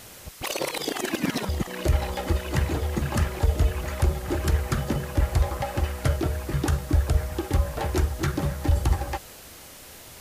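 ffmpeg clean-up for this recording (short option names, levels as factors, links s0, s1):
-af "afwtdn=0.0056"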